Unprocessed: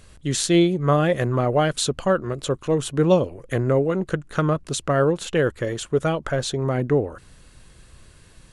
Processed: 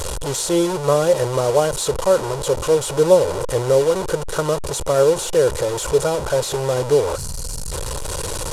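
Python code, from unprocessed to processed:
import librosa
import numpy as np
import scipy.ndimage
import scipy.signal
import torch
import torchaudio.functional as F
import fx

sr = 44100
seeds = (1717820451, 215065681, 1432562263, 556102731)

y = fx.delta_mod(x, sr, bps=64000, step_db=-18.5)
y = y + 0.34 * np.pad(y, (int(2.1 * sr / 1000.0), 0))[:len(y)]
y = fx.spec_box(y, sr, start_s=7.16, length_s=0.56, low_hz=270.0, high_hz=4000.0, gain_db=-11)
y = fx.graphic_eq(y, sr, hz=(250, 500, 1000, 2000, 8000), db=(-4, 8, 5, -7, 4))
y = y * 10.0 ** (-3.0 / 20.0)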